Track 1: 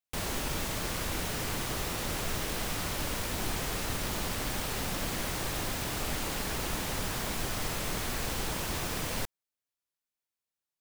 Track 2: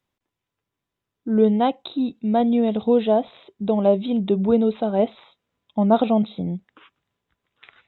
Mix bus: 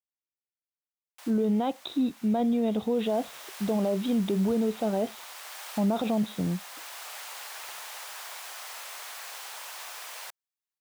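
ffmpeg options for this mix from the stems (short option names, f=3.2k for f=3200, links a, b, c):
-filter_complex "[0:a]highpass=f=700:w=0.5412,highpass=f=700:w=1.3066,adelay=1050,volume=-4.5dB,afade=t=in:st=2.9:d=0.3:silence=0.398107[a];[1:a]agate=range=-33dB:threshold=-50dB:ratio=3:detection=peak,alimiter=limit=-17dB:level=0:latency=1:release=33,volume=-2.5dB,asplit=2[b][c];[c]apad=whole_len=522691[d];[a][d]sidechaincompress=threshold=-29dB:ratio=8:attack=42:release=1160[e];[e][b]amix=inputs=2:normalize=0"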